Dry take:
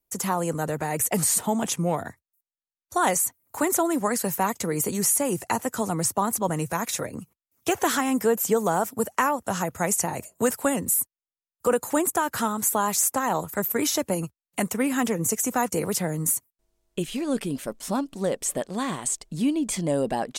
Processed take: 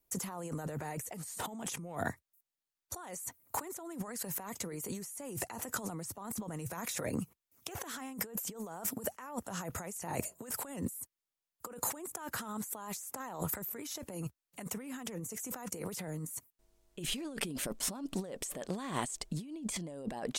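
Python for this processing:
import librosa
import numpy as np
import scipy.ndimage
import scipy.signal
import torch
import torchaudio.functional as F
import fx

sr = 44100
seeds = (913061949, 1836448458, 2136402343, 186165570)

y = fx.over_compress(x, sr, threshold_db=-35.0, ratio=-1.0)
y = y * 10.0 ** (-6.0 / 20.0)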